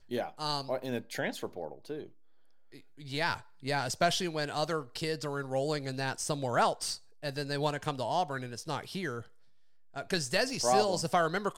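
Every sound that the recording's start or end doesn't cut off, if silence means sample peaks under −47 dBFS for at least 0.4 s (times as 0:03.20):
0:02.72–0:09.26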